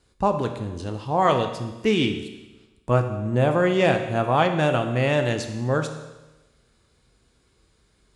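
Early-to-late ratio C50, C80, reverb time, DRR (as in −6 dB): 8.0 dB, 10.0 dB, 1.1 s, 5.5 dB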